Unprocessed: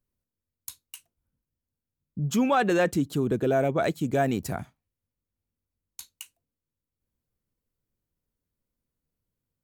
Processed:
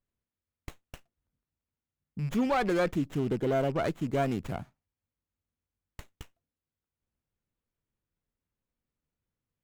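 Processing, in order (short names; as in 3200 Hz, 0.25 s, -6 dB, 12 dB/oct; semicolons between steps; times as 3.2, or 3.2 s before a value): rattling part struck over -29 dBFS, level -34 dBFS; running maximum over 9 samples; gain -4 dB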